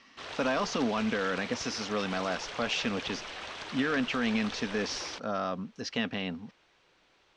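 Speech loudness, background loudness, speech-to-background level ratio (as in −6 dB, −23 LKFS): −32.0 LKFS, −40.0 LKFS, 8.0 dB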